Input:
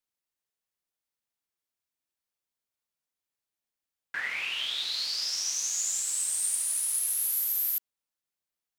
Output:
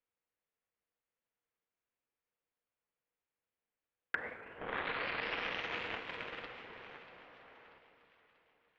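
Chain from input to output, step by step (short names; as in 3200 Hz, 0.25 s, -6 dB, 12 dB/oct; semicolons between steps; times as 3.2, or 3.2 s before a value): 4.58–6.97 cycle switcher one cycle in 2, muted; treble ducked by the level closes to 1200 Hz, closed at -25.5 dBFS; LPF 2700 Hz 24 dB/oct; bell 480 Hz +9 dB 0.21 oct; treble ducked by the level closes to 610 Hz, closed at -35 dBFS; gate -49 dBFS, range -16 dB; compressor 4:1, threshold -52 dBFS, peak gain reduction 14.5 dB; echo with dull and thin repeats by turns 0.319 s, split 1000 Hz, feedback 66%, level -11 dB; Schroeder reverb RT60 2.7 s, combs from 32 ms, DRR 10 dB; record warp 78 rpm, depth 100 cents; gain +16.5 dB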